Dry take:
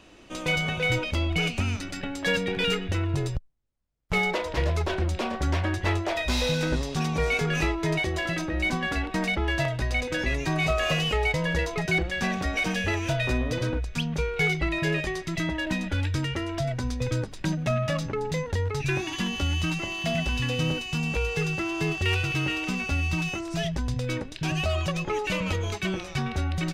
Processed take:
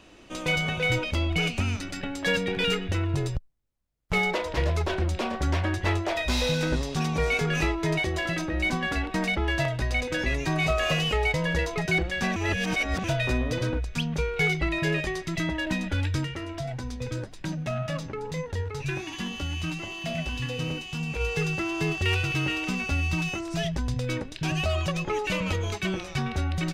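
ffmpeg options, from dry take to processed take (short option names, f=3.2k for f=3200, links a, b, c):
-filter_complex "[0:a]asplit=3[a][b][c];[a]afade=t=out:st=16.23:d=0.02[d];[b]flanger=delay=5.8:depth=7.5:regen=74:speed=1.9:shape=sinusoidal,afade=t=in:st=16.23:d=0.02,afade=t=out:st=21.19:d=0.02[e];[c]afade=t=in:st=21.19:d=0.02[f];[d][e][f]amix=inputs=3:normalize=0,asplit=3[g][h][i];[g]atrim=end=12.362[j];[h]atrim=start=12.358:end=13.042,asetpts=PTS-STARTPTS,areverse[k];[i]atrim=start=13.038[l];[j][k]acrossfade=d=0.004:c1=hsin:c2=hsin[m];[m][l]acrossfade=d=0.004:c1=hsin:c2=hsin"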